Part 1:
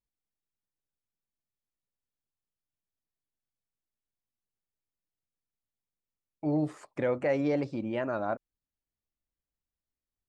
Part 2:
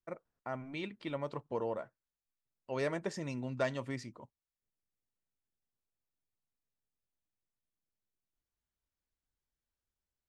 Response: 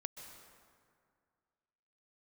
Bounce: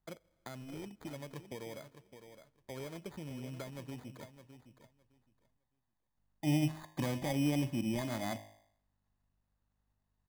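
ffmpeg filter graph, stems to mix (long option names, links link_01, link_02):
-filter_complex "[0:a]aecho=1:1:1.1:0.73,bandreject=frequency=52.44:width_type=h:width=4,bandreject=frequency=104.88:width_type=h:width=4,bandreject=frequency=157.32:width_type=h:width=4,bandreject=frequency=209.76:width_type=h:width=4,bandreject=frequency=262.2:width_type=h:width=4,bandreject=frequency=314.64:width_type=h:width=4,bandreject=frequency=367.08:width_type=h:width=4,bandreject=frequency=419.52:width_type=h:width=4,bandreject=frequency=471.96:width_type=h:width=4,bandreject=frequency=524.4:width_type=h:width=4,bandreject=frequency=576.84:width_type=h:width=4,bandreject=frequency=629.28:width_type=h:width=4,bandreject=frequency=681.72:width_type=h:width=4,bandreject=frequency=734.16:width_type=h:width=4,bandreject=frequency=786.6:width_type=h:width=4,bandreject=frequency=839.04:width_type=h:width=4,bandreject=frequency=891.48:width_type=h:width=4,bandreject=frequency=943.92:width_type=h:width=4,bandreject=frequency=996.36:width_type=h:width=4,bandreject=frequency=1048.8:width_type=h:width=4,bandreject=frequency=1101.24:width_type=h:width=4,volume=-0.5dB[link_01];[1:a]lowshelf=frequency=260:gain=7,acompressor=threshold=-42dB:ratio=4,aeval=exprs='val(0)+0.0001*(sin(2*PI*50*n/s)+sin(2*PI*2*50*n/s)/2+sin(2*PI*3*50*n/s)/3+sin(2*PI*4*50*n/s)/4+sin(2*PI*5*50*n/s)/5)':channel_layout=same,volume=-1dB,asplit=3[link_02][link_03][link_04];[link_02]atrim=end=5.57,asetpts=PTS-STARTPTS,afade=type=out:start_time=5.566:duration=0.004:curve=hsin[link_05];[link_03]atrim=start=5.57:end=6.17,asetpts=PTS-STARTPTS,volume=0[link_06];[link_04]atrim=start=6.17,asetpts=PTS-STARTPTS,afade=type=in:duration=0.004:curve=hsin[link_07];[link_05][link_06][link_07]concat=n=3:v=0:a=1,asplit=3[link_08][link_09][link_10];[link_09]volume=-19dB[link_11];[link_10]volume=-11dB[link_12];[2:a]atrim=start_sample=2205[link_13];[link_11][link_13]afir=irnorm=-1:irlink=0[link_14];[link_12]aecho=0:1:611|1222|1833:1|0.17|0.0289[link_15];[link_01][link_08][link_14][link_15]amix=inputs=4:normalize=0,acrossover=split=390|3000[link_16][link_17][link_18];[link_17]acompressor=threshold=-47dB:ratio=2[link_19];[link_16][link_19][link_18]amix=inputs=3:normalize=0,acrusher=samples=16:mix=1:aa=0.000001"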